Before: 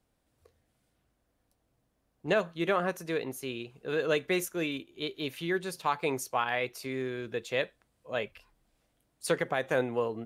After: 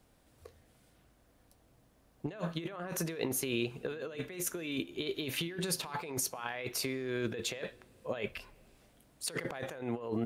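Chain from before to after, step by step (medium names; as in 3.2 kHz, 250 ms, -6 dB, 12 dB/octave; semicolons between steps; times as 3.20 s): compressor with a negative ratio -40 dBFS, ratio -1; on a send: reverberation RT60 2.6 s, pre-delay 3 ms, DRR 22.5 dB; on the sum: trim +2 dB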